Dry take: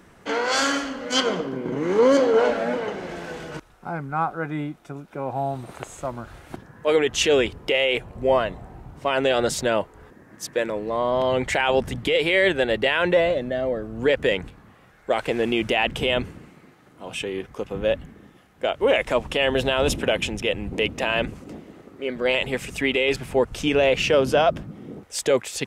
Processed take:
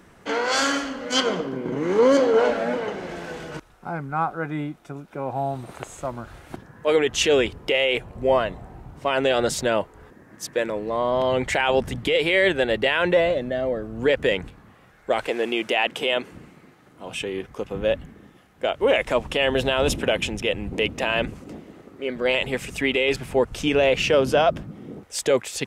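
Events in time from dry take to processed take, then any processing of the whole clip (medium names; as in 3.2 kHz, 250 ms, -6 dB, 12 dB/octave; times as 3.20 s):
15.27–16.32 s: high-pass 320 Hz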